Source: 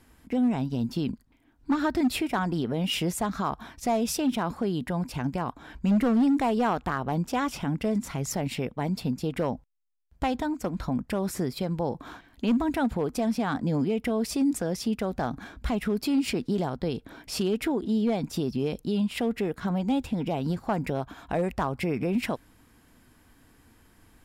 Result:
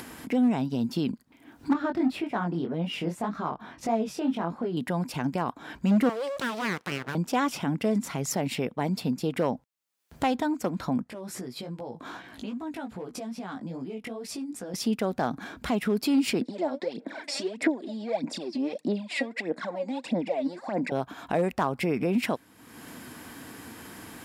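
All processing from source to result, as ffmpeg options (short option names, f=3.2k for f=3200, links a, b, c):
-filter_complex "[0:a]asettb=1/sr,asplit=3[a][b][c];[a]atrim=end=1.734[d];[b]atrim=start=1.73:end=4.77,asetpts=PTS-STARTPTS,afade=t=in:d=0.004:c=qsin,afade=t=out:st=3.036:d=0.004:c=qsin,lowpass=f=1.7k:p=1,flanger=delay=17.5:depth=6.5:speed=1.8[e];[c]atrim=start=4.766[f];[d][e]acrossfade=d=0.004:c1=hsin:c2=qsin[g];[g][f]acrossfade=d=0.004:c1=qsin:c2=hsin,asettb=1/sr,asplit=3[h][i][j];[h]atrim=end=6.094[k];[i]atrim=start=6.09:end=7.15,asetpts=PTS-STARTPTS,afade=t=in:d=0.004:c=qsin,afade=t=out:st=1.056:d=0.004:c=qsin,highpass=f=520:p=1,aeval=exprs='abs(val(0))':c=same[l];[j]atrim=start=7.146[m];[k][l]acrossfade=d=0.004:c1=hsin:c2=qsin[n];[n][m]acrossfade=d=0.004:c1=qsin:c2=hsin,asettb=1/sr,asplit=3[o][p][q];[o]atrim=end=11.044[r];[p]atrim=start=11.04:end=14.74,asetpts=PTS-STARTPTS,afade=t=in:d=0.004:c=qsin,afade=t=out:st=3.696:d=0.004:c=qsin,lowpass=12k,acompressor=threshold=-45dB:ratio=2:attack=3.2:release=140:knee=1:detection=peak,flanger=delay=15.5:depth=3.7:speed=2.5[s];[q]atrim=start=14.736[t];[r][s]acrossfade=d=0.004:c1=hsin:c2=qsin[u];[u][t]acrossfade=d=0.004:c1=qsin:c2=hsin,asettb=1/sr,asplit=3[v][w][x];[v]atrim=end=16.414[y];[w]atrim=start=16.41:end=20.92,asetpts=PTS-STARTPTS,afade=t=in:d=0.004:c=qsin,afade=t=out:st=4.506:d=0.004:c=qsin,acompressor=threshold=-30dB:ratio=6:attack=3.2:release=140:knee=1:detection=peak,aphaser=in_gain=1:out_gain=1:delay=3.7:decay=0.76:speed=1.6:type=sinusoidal,highpass=f=230:w=0.5412,highpass=f=230:w=1.3066,equalizer=f=410:t=q:w=4:g=-6,equalizer=f=590:t=q:w=4:g=8,equalizer=f=1.3k:t=q:w=4:g=-7,equalizer=f=2k:t=q:w=4:g=5,equalizer=f=3k:t=q:w=4:g=-8,equalizer=f=6.2k:t=q:w=4:g=-8,lowpass=f=7.7k:w=0.5412,lowpass=f=7.7k:w=1.3066[z];[x]atrim=start=20.916[aa];[y][z]acrossfade=d=0.004:c1=hsin:c2=qsin[ab];[ab][aa]acrossfade=d=0.004:c1=qsin:c2=hsin,highpass=160,acompressor=mode=upward:threshold=-32dB:ratio=2.5,volume=2dB"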